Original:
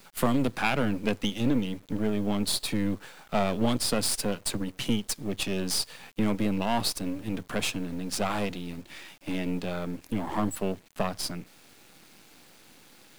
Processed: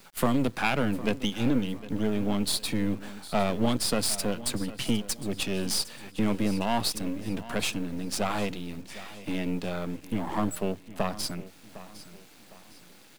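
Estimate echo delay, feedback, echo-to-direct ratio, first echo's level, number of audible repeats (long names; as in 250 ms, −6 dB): 757 ms, 38%, −16.0 dB, −16.5 dB, 3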